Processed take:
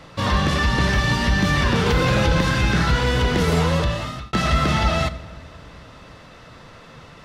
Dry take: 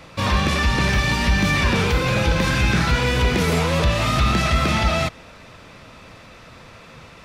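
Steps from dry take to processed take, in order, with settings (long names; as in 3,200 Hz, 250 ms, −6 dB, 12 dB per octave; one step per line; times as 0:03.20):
high-shelf EQ 7,600 Hz −6 dB
notch filter 2,400 Hz, Q 7.1
rectangular room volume 1,200 cubic metres, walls mixed, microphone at 0.38 metres
0:01.86–0:02.41: envelope flattener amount 50%
0:03.68–0:04.33: fade out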